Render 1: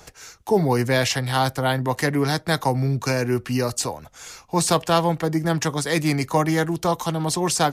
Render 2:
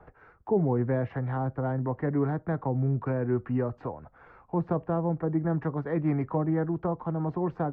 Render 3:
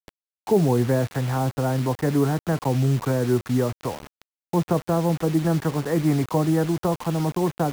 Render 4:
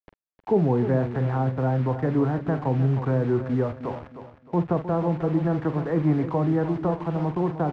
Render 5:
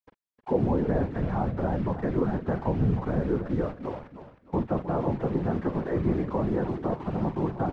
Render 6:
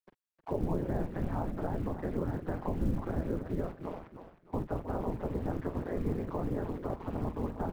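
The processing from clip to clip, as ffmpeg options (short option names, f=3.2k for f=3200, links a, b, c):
-filter_complex "[0:a]lowpass=f=1.5k:w=0.5412,lowpass=f=1.5k:w=1.3066,acrossover=split=540[a][b];[b]acompressor=threshold=-33dB:ratio=4[c];[a][c]amix=inputs=2:normalize=0,volume=-4.5dB"
-af "acrusher=bits=6:mix=0:aa=0.000001,volume=6dB"
-filter_complex "[0:a]lowpass=1.9k,asplit=2[a][b];[b]adelay=46,volume=-12dB[c];[a][c]amix=inputs=2:normalize=0,asplit=2[d][e];[e]aecho=0:1:310|620|930|1240:0.282|0.0986|0.0345|0.0121[f];[d][f]amix=inputs=2:normalize=0,volume=-2dB"
-af "afftfilt=real='hypot(re,im)*cos(2*PI*random(0))':imag='hypot(re,im)*sin(2*PI*random(1))':win_size=512:overlap=0.75,volume=2.5dB"
-filter_complex "[0:a]aeval=exprs='val(0)*sin(2*PI*86*n/s)':c=same,acrossover=split=130[a][b];[b]acompressor=threshold=-36dB:ratio=1.5[c];[a][c]amix=inputs=2:normalize=0,acrusher=bits=9:mode=log:mix=0:aa=0.000001,volume=-1.5dB"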